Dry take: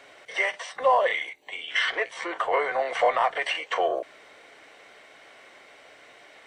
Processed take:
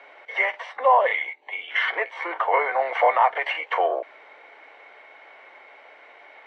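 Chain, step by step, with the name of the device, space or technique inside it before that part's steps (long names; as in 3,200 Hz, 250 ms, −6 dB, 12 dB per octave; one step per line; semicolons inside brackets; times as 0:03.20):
tin-can telephone (band-pass filter 420–2,300 Hz; hollow resonant body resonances 880/2,200 Hz, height 8 dB, ringing for 25 ms)
level +2.5 dB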